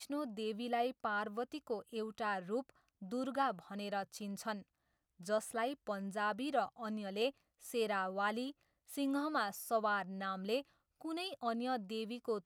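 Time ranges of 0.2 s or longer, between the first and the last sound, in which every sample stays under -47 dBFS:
2.70–3.02 s
4.62–5.21 s
7.30–7.65 s
8.51–8.90 s
10.62–11.02 s

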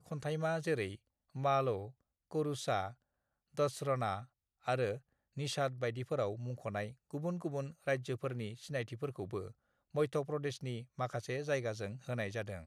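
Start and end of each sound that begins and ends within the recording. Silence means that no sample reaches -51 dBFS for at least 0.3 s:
1.35–1.90 s
2.31–2.93 s
3.57–4.25 s
4.65–4.98 s
5.37–9.52 s

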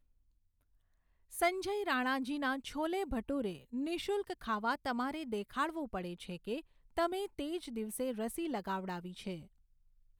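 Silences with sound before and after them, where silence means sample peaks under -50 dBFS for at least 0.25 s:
6.61–6.97 s

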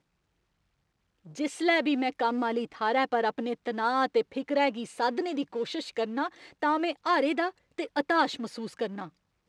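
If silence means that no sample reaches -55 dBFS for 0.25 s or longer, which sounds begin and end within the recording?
1.25–9.10 s

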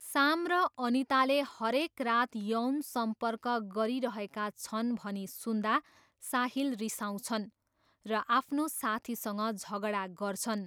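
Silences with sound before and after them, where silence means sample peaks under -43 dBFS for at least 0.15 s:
5.80–6.23 s
7.47–8.06 s

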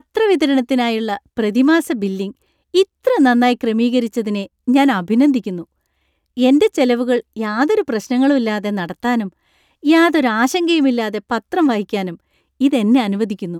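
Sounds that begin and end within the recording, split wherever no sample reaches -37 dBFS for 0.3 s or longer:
2.74–5.64 s
6.37–9.29 s
9.83–12.15 s

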